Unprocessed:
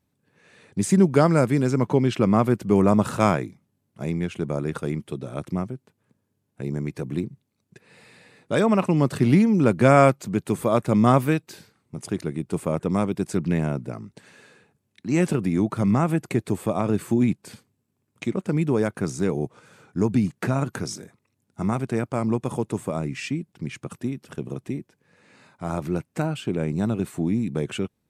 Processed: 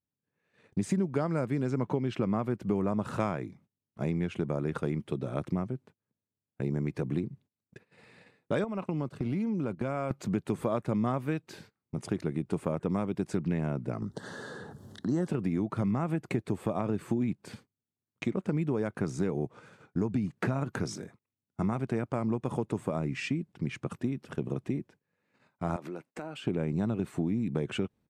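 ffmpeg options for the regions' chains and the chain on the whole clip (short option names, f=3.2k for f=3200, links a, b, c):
-filter_complex "[0:a]asettb=1/sr,asplit=3[a][b][c];[a]atrim=end=8.644[d];[b]atrim=start=8.64:end=10.11,asetpts=PTS-STARTPTS,afade=t=in:d=0.004:c=qsin,afade=t=out:st=1.466:d=0.004:c=qsin,agate=range=-15dB:threshold=-26dB:ratio=16:release=100:detection=peak,bandreject=f=1.8k:w=9.1,acompressor=threshold=-29dB:ratio=4:attack=3.2:release=140:knee=1:detection=peak[e];[c]atrim=start=10.106[f];[d][e]acrossfade=d=0.004:c1=hsin:c2=qsin[g];[g][f]acrossfade=d=0.004:c1=qsin:c2=hsin,asettb=1/sr,asplit=3[h][i][j];[h]atrim=end=14.024[k];[i]atrim=start=14.02:end=15.28,asetpts=PTS-STARTPTS,afade=t=in:d=0.004:c=qsin,afade=t=out:st=1.256:d=0.004:c=qsin,acompressor=mode=upward:threshold=-26dB:ratio=2.5:attack=3.2:release=140:knee=2.83:detection=peak,asuperstop=centerf=2400:order=4:qfactor=1.5[l];[j]atrim=start=15.276[m];[k][l]acrossfade=d=0.004:c1=hsin:c2=qsin[n];[n][m]acrossfade=d=0.004:c1=qsin:c2=hsin,asettb=1/sr,asplit=3[o][p][q];[o]atrim=end=25.764[r];[p]atrim=start=25.76:end=26.44,asetpts=PTS-STARTPTS,afade=t=in:d=0.004:c=qsin,afade=t=out:st=0.676:d=0.004:c=qsin,highpass=300,acompressor=threshold=-36dB:ratio=4:attack=3.2:release=140:knee=1:detection=peak[s];[q]atrim=start=26.436[t];[r][s]acrossfade=d=0.004:c1=hsin:c2=qsin[u];[u][t]acrossfade=d=0.004:c1=qsin:c2=hsin,lowpass=f=2.9k:p=1,agate=range=-20dB:threshold=-52dB:ratio=16:detection=peak,acompressor=threshold=-26dB:ratio=6"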